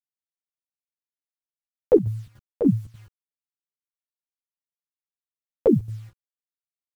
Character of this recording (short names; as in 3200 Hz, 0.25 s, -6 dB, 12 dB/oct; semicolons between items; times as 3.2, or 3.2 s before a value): a quantiser's noise floor 10-bit, dither none; chopped level 3.4 Hz, depth 60%, duty 70%; a shimmering, thickened sound